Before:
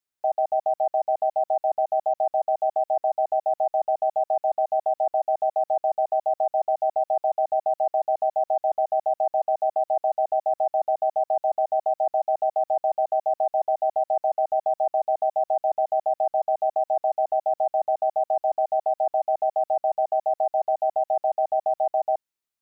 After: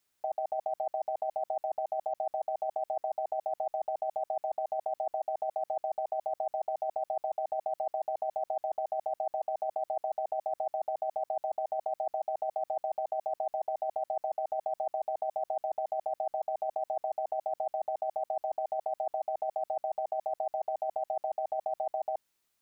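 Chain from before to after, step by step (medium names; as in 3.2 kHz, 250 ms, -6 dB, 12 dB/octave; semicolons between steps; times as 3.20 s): compressor with a negative ratio -32 dBFS, ratio -1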